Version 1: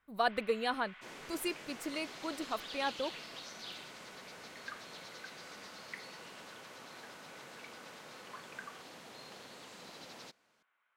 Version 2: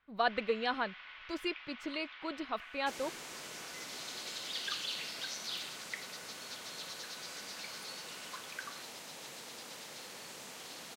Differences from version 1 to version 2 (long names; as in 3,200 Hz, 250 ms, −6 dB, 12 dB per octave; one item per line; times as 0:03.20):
speech: add high-frequency loss of the air 230 metres
second sound: entry +1.85 s
master: add high-shelf EQ 3,100 Hz +11.5 dB